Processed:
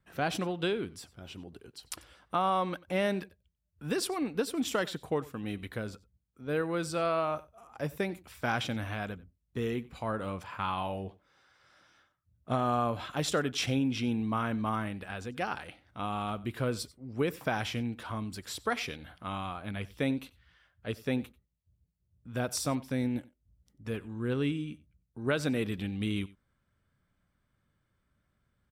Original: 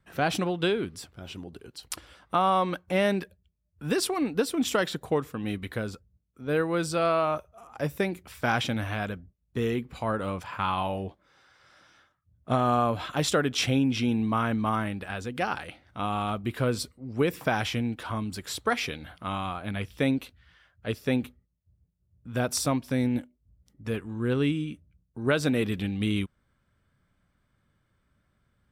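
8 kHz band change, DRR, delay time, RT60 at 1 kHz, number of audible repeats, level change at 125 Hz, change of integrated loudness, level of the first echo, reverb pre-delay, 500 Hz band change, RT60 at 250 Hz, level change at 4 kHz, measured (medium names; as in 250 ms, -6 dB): -5.0 dB, no reverb, 92 ms, no reverb, 1, -5.0 dB, -5.0 dB, -21.0 dB, no reverb, -5.0 dB, no reverb, -5.0 dB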